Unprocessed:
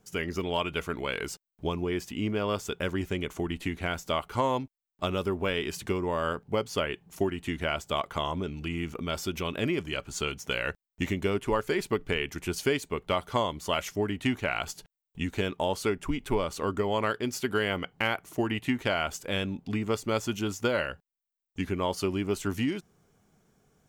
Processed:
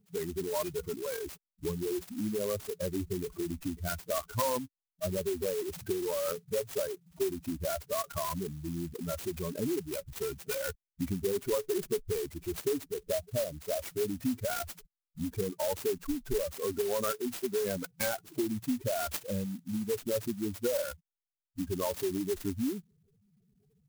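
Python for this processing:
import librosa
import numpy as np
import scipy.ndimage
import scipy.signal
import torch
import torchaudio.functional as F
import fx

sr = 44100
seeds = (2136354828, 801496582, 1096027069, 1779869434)

y = fx.spec_expand(x, sr, power=3.7)
y = fx.ellip_bandstop(y, sr, low_hz=660.0, high_hz=2600.0, order=3, stop_db=40, at=(12.32, 13.82))
y = fx.high_shelf_res(y, sr, hz=3100.0, db=6.0, q=3.0, at=(18.09, 19.2))
y = fx.env_lowpass(y, sr, base_hz=1800.0, full_db=-29.5)
y = fx.clock_jitter(y, sr, seeds[0], jitter_ms=0.097)
y = y * librosa.db_to_amplitude(-2.5)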